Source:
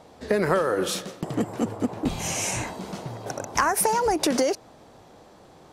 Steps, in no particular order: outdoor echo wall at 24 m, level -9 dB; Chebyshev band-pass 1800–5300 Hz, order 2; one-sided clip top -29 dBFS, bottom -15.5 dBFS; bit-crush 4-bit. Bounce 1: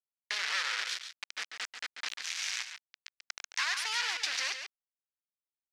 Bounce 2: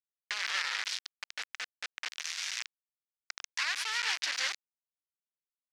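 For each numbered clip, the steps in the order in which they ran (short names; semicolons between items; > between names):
bit-crush > outdoor echo > one-sided clip > Chebyshev band-pass; one-sided clip > outdoor echo > bit-crush > Chebyshev band-pass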